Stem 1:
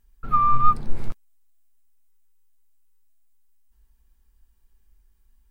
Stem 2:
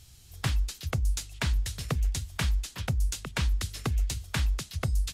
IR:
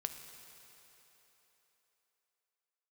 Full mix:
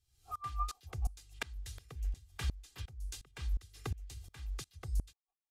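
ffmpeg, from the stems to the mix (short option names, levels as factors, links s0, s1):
-filter_complex "[0:a]asplit=3[s0][s1][s2];[s0]bandpass=f=730:t=q:w=8,volume=1[s3];[s1]bandpass=f=1090:t=q:w=8,volume=0.501[s4];[s2]bandpass=f=2440:t=q:w=8,volume=0.355[s5];[s3][s4][s5]amix=inputs=3:normalize=0,equalizer=f=840:w=1.7:g=12,aeval=exprs='val(0)*pow(10,-27*(0.5-0.5*cos(2*PI*6.6*n/s))/20)':c=same,volume=0.75[s6];[1:a]volume=0.447[s7];[s6][s7]amix=inputs=2:normalize=0,aecho=1:1:2.5:0.55,aeval=exprs='val(0)*pow(10,-23*if(lt(mod(-2.8*n/s,1),2*abs(-2.8)/1000),1-mod(-2.8*n/s,1)/(2*abs(-2.8)/1000),(mod(-2.8*n/s,1)-2*abs(-2.8)/1000)/(1-2*abs(-2.8)/1000))/20)':c=same"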